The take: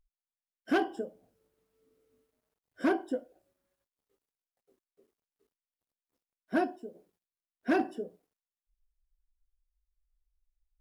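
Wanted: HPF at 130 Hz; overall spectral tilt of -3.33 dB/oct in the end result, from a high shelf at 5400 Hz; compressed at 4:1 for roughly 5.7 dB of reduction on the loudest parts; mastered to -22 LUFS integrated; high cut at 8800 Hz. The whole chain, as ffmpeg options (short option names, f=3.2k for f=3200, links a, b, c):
-af "highpass=130,lowpass=8.8k,highshelf=f=5.4k:g=6,acompressor=threshold=-29dB:ratio=4,volume=15.5dB"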